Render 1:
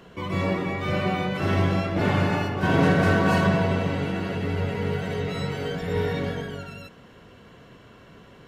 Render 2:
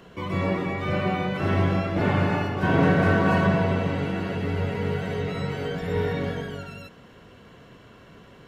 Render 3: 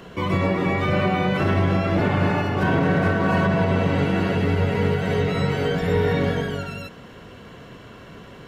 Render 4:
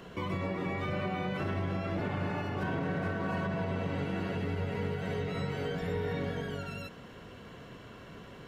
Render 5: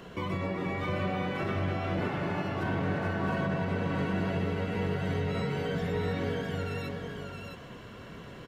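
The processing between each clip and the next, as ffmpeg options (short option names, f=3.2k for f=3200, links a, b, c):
-filter_complex "[0:a]acrossover=split=3000[a][b];[b]acompressor=threshold=-47dB:ratio=4:attack=1:release=60[c];[a][c]amix=inputs=2:normalize=0"
-af "alimiter=limit=-18dB:level=0:latency=1:release=158,volume=7dB"
-af "acompressor=threshold=-29dB:ratio=2,volume=-6.5dB"
-af "aecho=1:1:663:0.596,volume=1.5dB"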